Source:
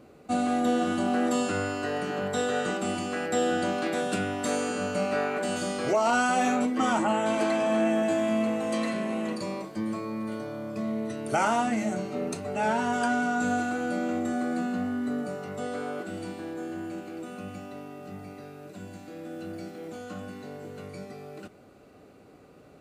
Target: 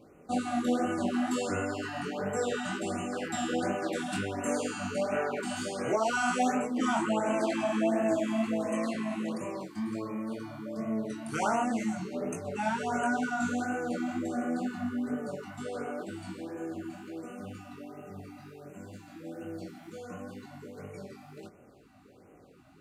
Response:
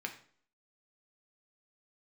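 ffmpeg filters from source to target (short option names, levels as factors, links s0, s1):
-af "flanger=delay=18:depth=6.1:speed=2.1,afftfilt=real='re*(1-between(b*sr/1024,420*pow(4400/420,0.5+0.5*sin(2*PI*1.4*pts/sr))/1.41,420*pow(4400/420,0.5+0.5*sin(2*PI*1.4*pts/sr))*1.41))':imag='im*(1-between(b*sr/1024,420*pow(4400/420,0.5+0.5*sin(2*PI*1.4*pts/sr))/1.41,420*pow(4400/420,0.5+0.5*sin(2*PI*1.4*pts/sr))*1.41))':win_size=1024:overlap=0.75"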